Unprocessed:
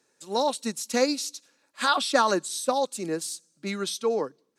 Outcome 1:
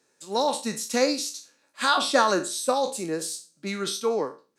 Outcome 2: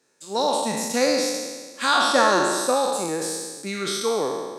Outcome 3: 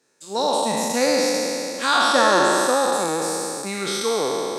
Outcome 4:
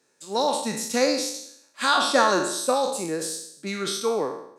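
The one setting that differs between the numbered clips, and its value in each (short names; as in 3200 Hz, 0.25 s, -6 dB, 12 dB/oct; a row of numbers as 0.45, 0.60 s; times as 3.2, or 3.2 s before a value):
spectral trails, RT60: 0.32, 1.48, 3.14, 0.7 s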